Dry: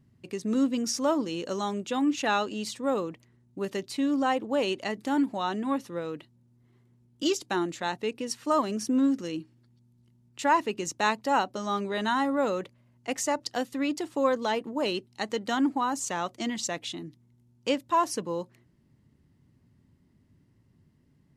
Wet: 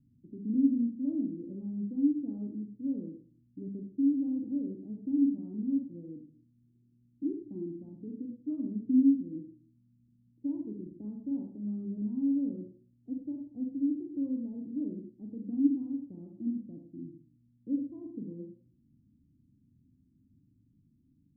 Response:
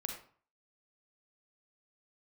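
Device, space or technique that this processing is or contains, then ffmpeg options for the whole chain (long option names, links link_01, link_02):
next room: -filter_complex "[0:a]lowpass=frequency=270:width=0.5412,lowpass=frequency=270:width=1.3066,equalizer=frequency=290:width_type=o:width=0.35:gain=9.5[link_01];[1:a]atrim=start_sample=2205[link_02];[link_01][link_02]afir=irnorm=-1:irlink=0,volume=-3.5dB"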